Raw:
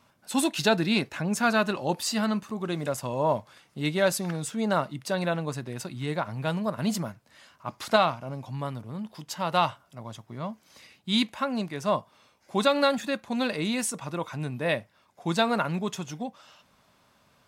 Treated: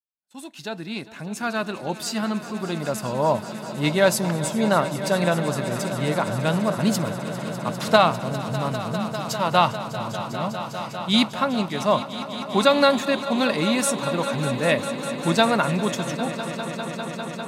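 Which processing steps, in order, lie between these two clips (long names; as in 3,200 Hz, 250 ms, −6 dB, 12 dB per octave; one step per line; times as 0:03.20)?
fade in at the beginning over 3.93 s
noise gate −57 dBFS, range −23 dB
echo that builds up and dies away 200 ms, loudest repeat 5, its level −15.5 dB
level +5.5 dB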